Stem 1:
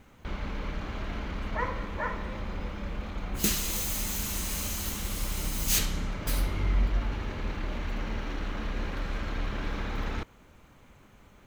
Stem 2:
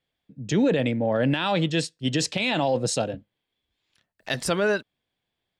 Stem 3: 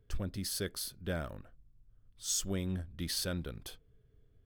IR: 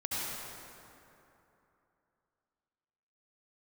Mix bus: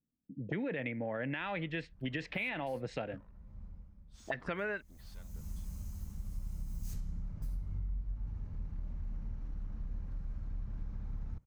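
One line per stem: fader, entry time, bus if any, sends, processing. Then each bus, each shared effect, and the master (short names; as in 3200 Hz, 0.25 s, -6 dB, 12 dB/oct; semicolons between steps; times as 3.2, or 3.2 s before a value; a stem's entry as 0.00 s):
-5.0 dB, 1.15 s, no send, EQ curve 150 Hz 0 dB, 350 Hz -19 dB, 860 Hz -18 dB, 3400 Hz -30 dB, 5200 Hz -20 dB; auto duck -16 dB, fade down 0.65 s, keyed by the second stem
-6.5 dB, 0.00 s, no send, envelope low-pass 240–2100 Hz up, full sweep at -24 dBFS
-13.5 dB, 1.90 s, no send, tube stage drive 38 dB, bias 0.75; photocell phaser 1 Hz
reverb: off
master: compressor 6:1, threshold -34 dBFS, peak gain reduction 11 dB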